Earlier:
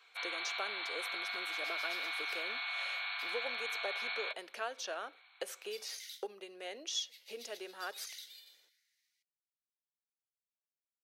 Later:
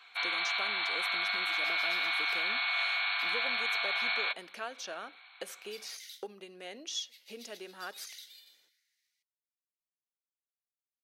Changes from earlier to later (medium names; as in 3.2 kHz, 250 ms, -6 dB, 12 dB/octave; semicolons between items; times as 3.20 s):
speech: add high-pass 520 Hz 12 dB/octave; first sound +7.5 dB; master: remove high-pass 450 Hz 24 dB/octave